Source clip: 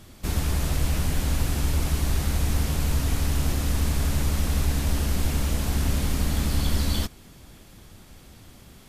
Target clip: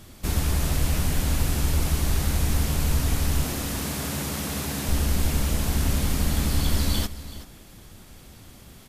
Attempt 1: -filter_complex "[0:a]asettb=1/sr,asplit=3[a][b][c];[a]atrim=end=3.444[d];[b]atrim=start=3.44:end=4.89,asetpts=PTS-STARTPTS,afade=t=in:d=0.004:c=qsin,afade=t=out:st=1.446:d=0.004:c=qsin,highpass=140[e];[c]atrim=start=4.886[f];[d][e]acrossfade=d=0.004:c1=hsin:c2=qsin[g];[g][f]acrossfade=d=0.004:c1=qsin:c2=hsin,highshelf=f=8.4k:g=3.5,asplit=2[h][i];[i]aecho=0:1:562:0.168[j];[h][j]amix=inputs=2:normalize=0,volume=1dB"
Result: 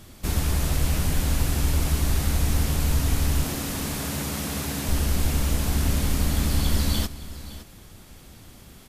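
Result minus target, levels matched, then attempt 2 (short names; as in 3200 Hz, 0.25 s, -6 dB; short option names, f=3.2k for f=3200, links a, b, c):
echo 0.184 s late
-filter_complex "[0:a]asettb=1/sr,asplit=3[a][b][c];[a]atrim=end=3.444[d];[b]atrim=start=3.44:end=4.89,asetpts=PTS-STARTPTS,afade=t=in:d=0.004:c=qsin,afade=t=out:st=1.446:d=0.004:c=qsin,highpass=140[e];[c]atrim=start=4.886[f];[d][e]acrossfade=d=0.004:c1=hsin:c2=qsin[g];[g][f]acrossfade=d=0.004:c1=qsin:c2=hsin,highshelf=f=8.4k:g=3.5,asplit=2[h][i];[i]aecho=0:1:378:0.168[j];[h][j]amix=inputs=2:normalize=0,volume=1dB"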